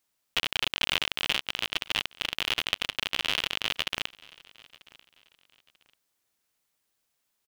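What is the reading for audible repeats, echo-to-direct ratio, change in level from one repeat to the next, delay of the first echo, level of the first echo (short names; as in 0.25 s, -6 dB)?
2, -23.0 dB, -10.5 dB, 0.94 s, -23.5 dB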